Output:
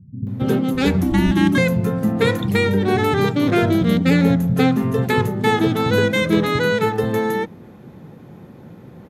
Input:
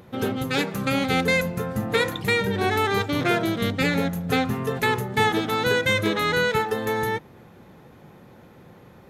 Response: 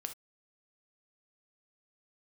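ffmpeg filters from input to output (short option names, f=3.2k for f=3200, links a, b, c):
-filter_complex "[0:a]asettb=1/sr,asplit=3[a][b][c];[a]atrim=end=0.744[d];[b]atrim=start=0.74:end=1.31,asetpts=PTS-STARTPTS,afade=t=in:d=0.004:c=qsin,afade=t=out:st=0.566:d=0.004:c=qsin,afreqshift=-460[e];[c]atrim=start=1.306[f];[d][e]acrossfade=d=0.004:c1=hsin:c2=qsin[g];[g][f]acrossfade=d=0.004:c1=qsin:c2=hsin,equalizer=f=180:w=0.57:g=13,acrossover=split=170[h][i];[i]adelay=270[j];[h][j]amix=inputs=2:normalize=0"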